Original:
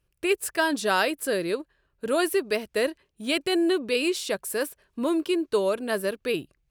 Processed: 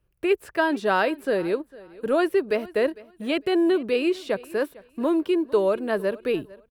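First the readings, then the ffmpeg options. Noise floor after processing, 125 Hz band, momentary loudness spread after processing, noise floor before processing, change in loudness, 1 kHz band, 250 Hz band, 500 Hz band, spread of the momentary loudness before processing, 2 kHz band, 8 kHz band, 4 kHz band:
-65 dBFS, n/a, 7 LU, -74 dBFS, +2.0 dB, +2.0 dB, +2.5 dB, +3.0 dB, 7 LU, -0.5 dB, under -10 dB, -5.0 dB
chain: -filter_complex "[0:a]acrossover=split=5500[a][b];[b]acompressor=threshold=-47dB:ratio=4:attack=1:release=60[c];[a][c]amix=inputs=2:normalize=0,equalizer=f=6.2k:t=o:w=2.6:g=-11,acrossover=split=240[d][e];[d]asoftclip=type=hard:threshold=-39.5dB[f];[f][e]amix=inputs=2:normalize=0,aecho=1:1:452|904:0.0891|0.0178,volume=3.5dB"

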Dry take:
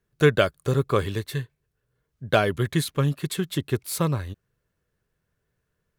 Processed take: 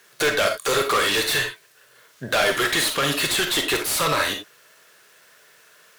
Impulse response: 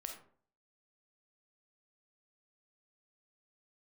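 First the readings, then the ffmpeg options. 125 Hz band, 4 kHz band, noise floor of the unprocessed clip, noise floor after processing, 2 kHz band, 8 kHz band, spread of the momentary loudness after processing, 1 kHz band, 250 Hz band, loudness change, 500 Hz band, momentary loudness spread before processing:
-11.5 dB, +12.5 dB, -78 dBFS, -55 dBFS, +9.0 dB, +11.0 dB, 6 LU, +6.0 dB, -3.5 dB, +4.0 dB, +0.5 dB, 12 LU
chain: -filter_complex "[0:a]highpass=f=480:p=1,highshelf=f=2.7k:g=10,acompressor=threshold=-30dB:ratio=2.5,asplit=2[a][b];[b]highpass=f=720:p=1,volume=37dB,asoftclip=type=tanh:threshold=-8dB[c];[a][c]amix=inputs=2:normalize=0,lowpass=f=4.7k:p=1,volume=-6dB[d];[1:a]atrim=start_sample=2205,atrim=end_sample=4410[e];[d][e]afir=irnorm=-1:irlink=0"

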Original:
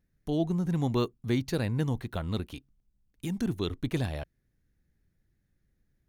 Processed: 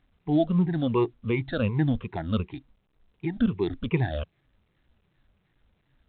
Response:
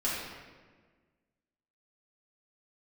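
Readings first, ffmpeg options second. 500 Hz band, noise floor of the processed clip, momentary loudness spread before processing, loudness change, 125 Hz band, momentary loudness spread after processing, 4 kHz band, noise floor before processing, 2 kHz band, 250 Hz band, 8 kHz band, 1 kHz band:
+5.0 dB, -72 dBFS, 12 LU, +4.0 dB, +3.0 dB, 11 LU, -1.0 dB, -76 dBFS, +5.0 dB, +4.5 dB, under -30 dB, +5.0 dB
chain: -af "afftfilt=real='re*pow(10,20/40*sin(2*PI*(0.79*log(max(b,1)*sr/1024/100)/log(2)-(-2.7)*(pts-256)/sr)))':imag='im*pow(10,20/40*sin(2*PI*(0.79*log(max(b,1)*sr/1024/100)/log(2)-(-2.7)*(pts-256)/sr)))':win_size=1024:overlap=0.75" -ar 8000 -c:a pcm_alaw

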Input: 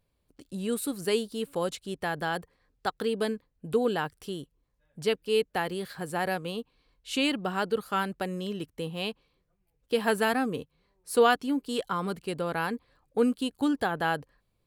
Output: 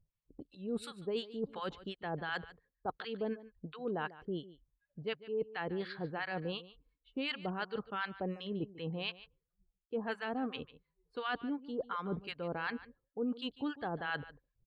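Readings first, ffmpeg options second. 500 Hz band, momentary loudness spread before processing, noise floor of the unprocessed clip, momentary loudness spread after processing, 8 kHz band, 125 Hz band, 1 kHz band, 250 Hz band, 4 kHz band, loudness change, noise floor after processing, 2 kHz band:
-10.5 dB, 10 LU, -75 dBFS, 9 LU, under -20 dB, -6.0 dB, -10.5 dB, -9.0 dB, -9.0 dB, -9.5 dB, under -85 dBFS, -8.0 dB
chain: -filter_complex "[0:a]acrossover=split=1000[a][b];[a]aeval=exprs='val(0)*(1-1/2+1/2*cos(2*PI*2.8*n/s))':c=same[c];[b]aeval=exprs='val(0)*(1-1/2-1/2*cos(2*PI*2.8*n/s))':c=same[d];[c][d]amix=inputs=2:normalize=0,lowpass=3.7k,areverse,acompressor=threshold=-40dB:ratio=5,areverse,afftdn=nr=19:nf=-65,aecho=1:1:146:0.141,volume=5dB"

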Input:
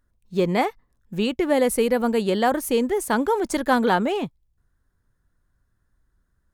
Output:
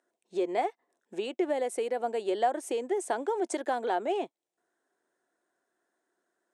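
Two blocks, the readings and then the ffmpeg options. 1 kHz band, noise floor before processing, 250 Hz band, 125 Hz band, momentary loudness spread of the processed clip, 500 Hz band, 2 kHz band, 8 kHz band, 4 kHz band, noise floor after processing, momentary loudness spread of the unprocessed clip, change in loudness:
-7.0 dB, -71 dBFS, -13.5 dB, under -25 dB, 7 LU, -7.5 dB, -12.5 dB, -9.5 dB, -12.0 dB, under -85 dBFS, 8 LU, -9.0 dB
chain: -af "acompressor=threshold=-33dB:ratio=3,highpass=f=320:w=0.5412,highpass=f=320:w=1.3066,equalizer=f=360:t=q:w=4:g=7,equalizer=f=700:t=q:w=4:g=10,equalizer=f=1.2k:t=q:w=4:g=-5,equalizer=f=4.6k:t=q:w=4:g=-5,equalizer=f=8.4k:t=q:w=4:g=5,lowpass=f=8.8k:w=0.5412,lowpass=f=8.8k:w=1.3066"

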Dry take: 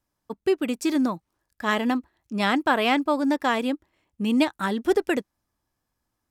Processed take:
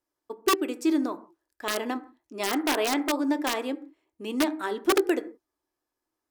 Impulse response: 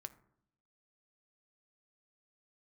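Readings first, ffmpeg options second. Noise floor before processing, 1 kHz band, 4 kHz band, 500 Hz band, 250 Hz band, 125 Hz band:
-81 dBFS, -4.5 dB, -1.0 dB, -2.5 dB, -3.5 dB, n/a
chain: -filter_complex "[1:a]atrim=start_sample=2205,afade=t=out:st=0.23:d=0.01,atrim=end_sample=10584[a];[0:a][a]afir=irnorm=-1:irlink=0,aeval=exprs='(mod(7.94*val(0)+1,2)-1)/7.94':c=same,lowshelf=f=240:t=q:w=3:g=-10"

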